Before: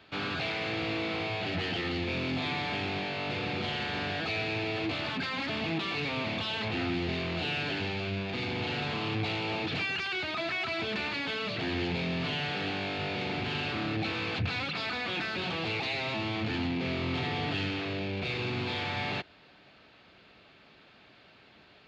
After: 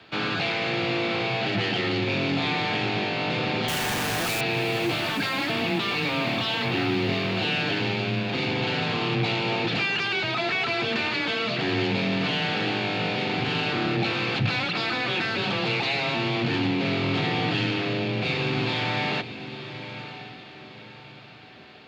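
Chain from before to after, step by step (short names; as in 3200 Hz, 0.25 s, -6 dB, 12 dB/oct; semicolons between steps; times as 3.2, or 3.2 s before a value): frequency shift +19 Hz; 3.68–4.41 Schmitt trigger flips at -46 dBFS; diffused feedback echo 0.992 s, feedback 40%, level -11.5 dB; gain +6.5 dB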